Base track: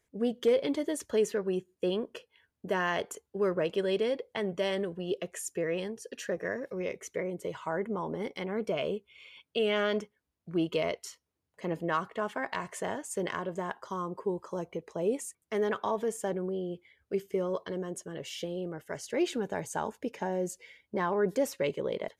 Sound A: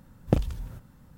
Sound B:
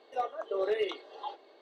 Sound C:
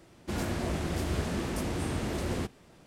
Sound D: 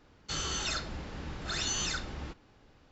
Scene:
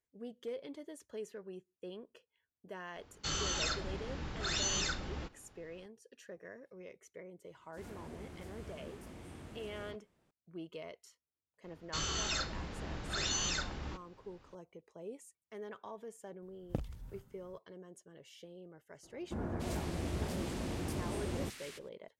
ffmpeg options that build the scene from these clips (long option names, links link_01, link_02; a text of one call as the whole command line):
ffmpeg -i bed.wav -i cue0.wav -i cue1.wav -i cue2.wav -i cue3.wav -filter_complex "[4:a]asplit=2[link_01][link_02];[3:a]asplit=2[link_03][link_04];[0:a]volume=-16.5dB[link_05];[link_03]acrossover=split=4700[link_06][link_07];[link_06]adelay=40[link_08];[link_08][link_07]amix=inputs=2:normalize=0[link_09];[1:a]dynaudnorm=framelen=140:gausssize=3:maxgain=7dB[link_10];[link_04]acrossover=split=1500[link_11][link_12];[link_12]adelay=290[link_13];[link_11][link_13]amix=inputs=2:normalize=0[link_14];[link_01]atrim=end=2.91,asetpts=PTS-STARTPTS,volume=-1.5dB,afade=type=in:duration=0.004:curve=hsin,afade=type=out:start_time=2.906:duration=0.004:curve=hsin,adelay=2950[link_15];[link_09]atrim=end=2.86,asetpts=PTS-STARTPTS,volume=-18dB,afade=type=in:duration=0.004:curve=hsin,afade=type=out:start_time=2.856:duration=0.004:curve=hsin,adelay=7450[link_16];[link_02]atrim=end=2.91,asetpts=PTS-STARTPTS,volume=-2dB,afade=type=in:duration=0.004:curve=hsin,afade=type=out:start_time=2.906:duration=0.004:curve=hsin,adelay=11640[link_17];[link_10]atrim=end=1.17,asetpts=PTS-STARTPTS,volume=-17.5dB,afade=type=in:duration=0.004:curve=hsin,afade=type=out:start_time=1.166:duration=0.004:curve=hsin,adelay=16420[link_18];[link_14]atrim=end=2.86,asetpts=PTS-STARTPTS,volume=-6dB,afade=type=in:duration=0.004:curve=hsin,afade=type=out:start_time=2.856:duration=0.004:curve=hsin,adelay=19030[link_19];[link_05][link_15][link_16][link_17][link_18][link_19]amix=inputs=6:normalize=0" out.wav